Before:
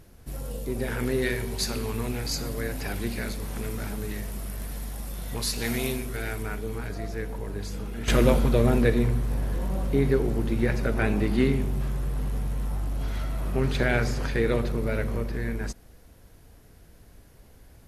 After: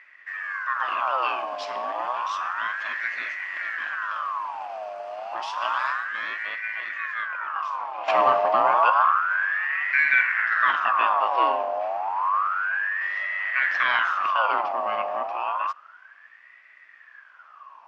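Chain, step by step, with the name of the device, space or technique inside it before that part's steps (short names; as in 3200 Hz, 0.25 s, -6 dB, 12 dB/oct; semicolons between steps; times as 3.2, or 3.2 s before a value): 9.84–10.85 doubler 47 ms -3 dB; voice changer toy (ring modulator with a swept carrier 1300 Hz, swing 50%, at 0.3 Hz; speaker cabinet 440–4500 Hz, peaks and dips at 450 Hz -9 dB, 640 Hz +5 dB, 1100 Hz +9 dB, 1600 Hz +4 dB, 2600 Hz +7 dB, 3900 Hz -8 dB)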